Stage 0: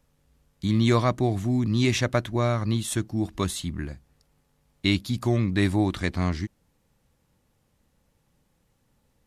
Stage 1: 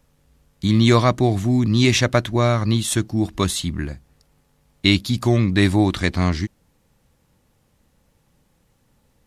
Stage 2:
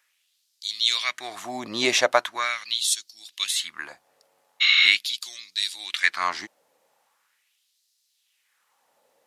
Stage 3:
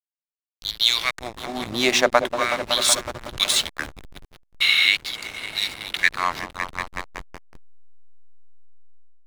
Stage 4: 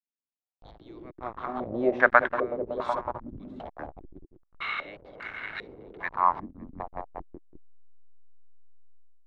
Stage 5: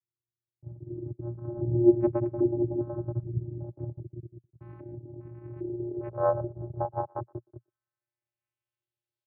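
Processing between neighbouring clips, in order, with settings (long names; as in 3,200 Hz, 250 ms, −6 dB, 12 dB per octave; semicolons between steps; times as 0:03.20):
dynamic equaliser 4,400 Hz, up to +3 dB, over −46 dBFS, Q 0.76; level +6 dB
healed spectral selection 0:04.64–0:04.85, 1,100–7,300 Hz after; auto-filter high-pass sine 0.41 Hz 570–4,600 Hz; level −1.5 dB
echo whose low-pass opens from repeat to repeat 186 ms, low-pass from 750 Hz, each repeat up 1 octave, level −6 dB; slack as between gear wheels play −25 dBFS; automatic gain control gain up to 11 dB; level −1 dB
low-pass on a step sequencer 2.5 Hz 260–1,600 Hz; level −6 dB
channel vocoder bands 8, square 118 Hz; far-end echo of a speakerphone 120 ms, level −28 dB; low-pass filter sweep 260 Hz → 4,100 Hz, 0:05.27–0:09.09; level +3.5 dB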